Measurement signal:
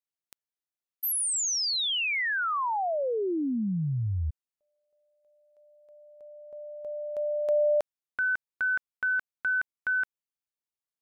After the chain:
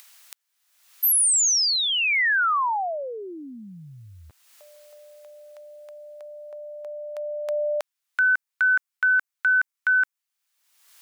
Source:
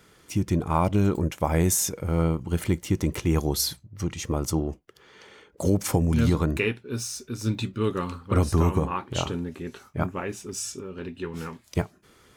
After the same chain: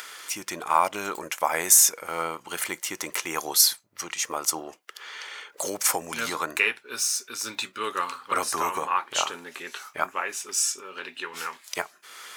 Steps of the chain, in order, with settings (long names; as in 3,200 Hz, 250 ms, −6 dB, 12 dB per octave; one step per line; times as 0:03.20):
high-pass filter 1,100 Hz 12 dB per octave
dynamic equaliser 3,400 Hz, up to −5 dB, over −47 dBFS, Q 1.2
in parallel at +1 dB: upward compression 4 to 1, threshold −40 dBFS
on the sum: level +3 dB